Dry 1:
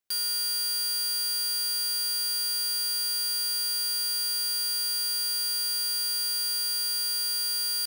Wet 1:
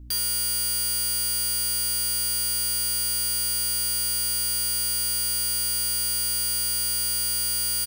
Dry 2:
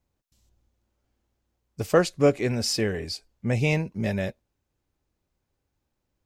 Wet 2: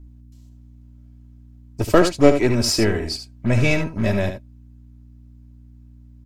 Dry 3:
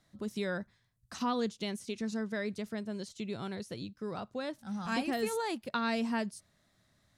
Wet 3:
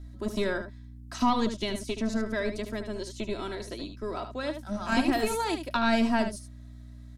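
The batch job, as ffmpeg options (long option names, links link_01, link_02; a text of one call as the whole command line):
ffmpeg -i in.wav -filter_complex "[0:a]aeval=exprs='0.531*(cos(1*acos(clip(val(0)/0.531,-1,1)))-cos(1*PI/2))+0.0266*(cos(8*acos(clip(val(0)/0.531,-1,1)))-cos(8*PI/2))':channel_layout=same,acrossover=split=270|1300[link_01][link_02][link_03];[link_01]acrusher=bits=5:mix=0:aa=0.5[link_04];[link_04][link_02][link_03]amix=inputs=3:normalize=0,aeval=exprs='val(0)+0.00251*(sin(2*PI*60*n/s)+sin(2*PI*2*60*n/s)/2+sin(2*PI*3*60*n/s)/3+sin(2*PI*4*60*n/s)/4+sin(2*PI*5*60*n/s)/5)':channel_layout=same,lowshelf=frequency=200:gain=6.5,aecho=1:1:3.1:0.5,asplit=2[link_05][link_06];[link_06]aecho=0:1:75:0.355[link_07];[link_05][link_07]amix=inputs=2:normalize=0,volume=4dB" out.wav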